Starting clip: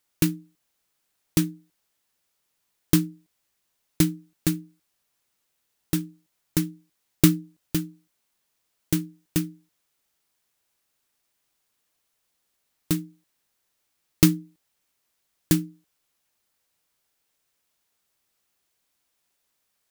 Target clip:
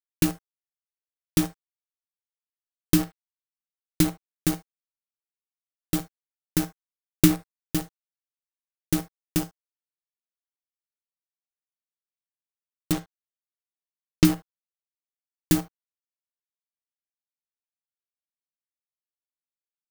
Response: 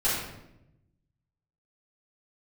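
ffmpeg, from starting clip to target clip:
-filter_complex "[0:a]asettb=1/sr,asplit=3[a][b][c];[a]atrim=end=12.924[d];[b]atrim=start=12.92:end=14.25,asetpts=PTS-STARTPTS,afade=t=in:d=0.004:c=qsin,afade=t=out:st=1.326:d=0.004:c=qsin,lowpass=5.7k[e];[c]atrim=start=14.246[f];[d][e]acrossfade=d=0.004:c1=hsin:c2=qsin[g];[g][f]acrossfade=d=0.004:c1=qsin:c2=hsin,aeval=exprs='val(0)*gte(abs(val(0)),0.0562)':c=same,asplit=2[h][i];[1:a]atrim=start_sample=2205,atrim=end_sample=3528[j];[i][j]afir=irnorm=-1:irlink=0,volume=-20.5dB[k];[h][k]amix=inputs=2:normalize=0,volume=-1dB"

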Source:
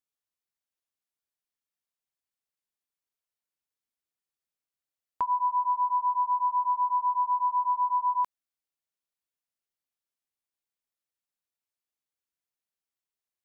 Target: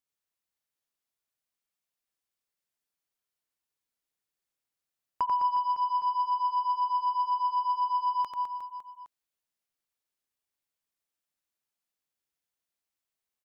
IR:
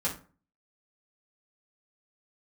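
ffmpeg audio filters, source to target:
-af "aeval=exprs='0.1*(cos(1*acos(clip(val(0)/0.1,-1,1)))-cos(1*PI/2))+0.00501*(cos(3*acos(clip(val(0)/0.1,-1,1)))-cos(3*PI/2))+0.00398*(cos(5*acos(clip(val(0)/0.1,-1,1)))-cos(5*PI/2))':c=same,aecho=1:1:90|207|359.1|556.8|813.9:0.631|0.398|0.251|0.158|0.1"

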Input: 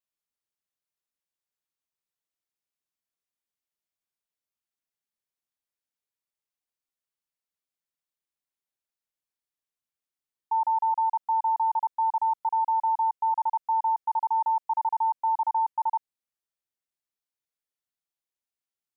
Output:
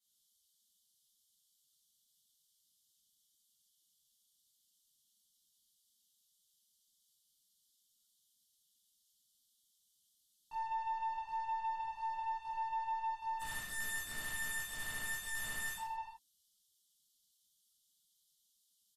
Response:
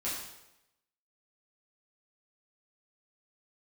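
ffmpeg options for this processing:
-filter_complex "[0:a]firequalizer=gain_entry='entry(310,0);entry(440,-17);entry(620,-15);entry(970,-11);entry(1400,-7);entry(2200,-29);entry(3100,12)':delay=0.05:min_phase=1,acompressor=threshold=-42dB:ratio=12,aeval=exprs='(tanh(251*val(0)+0.35)-tanh(0.35))/251':c=same,asplit=3[a][b][c];[a]afade=t=out:st=13.39:d=0.02[d];[b]aeval=exprs='0.00562*sin(PI/2*5.62*val(0)/0.00562)':c=same,afade=t=in:st=13.39:d=0.02,afade=t=out:st=15.76:d=0.02[e];[c]afade=t=in:st=15.76:d=0.02[f];[d][e][f]amix=inputs=3:normalize=0[g];[1:a]atrim=start_sample=2205,afade=t=out:st=0.18:d=0.01,atrim=end_sample=8379,asetrate=28224,aresample=44100[h];[g][h]afir=irnorm=-1:irlink=0,volume=1dB" -ar 44100 -c:a libmp3lame -b:a 56k

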